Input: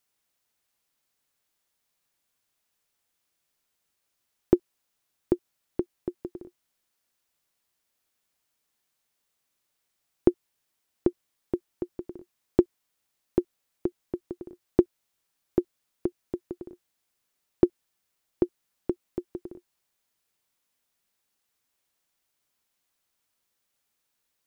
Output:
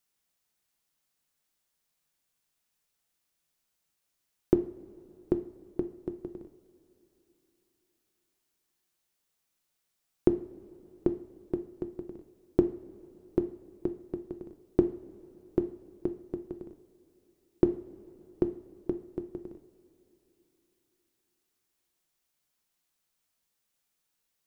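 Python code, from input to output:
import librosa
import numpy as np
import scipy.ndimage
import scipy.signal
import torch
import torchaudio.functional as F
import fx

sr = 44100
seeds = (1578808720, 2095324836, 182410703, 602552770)

y = fx.bass_treble(x, sr, bass_db=3, treble_db=2)
y = fx.rev_double_slope(y, sr, seeds[0], early_s=0.47, late_s=3.6, knee_db=-18, drr_db=7.5)
y = y * librosa.db_to_amplitude(-4.0)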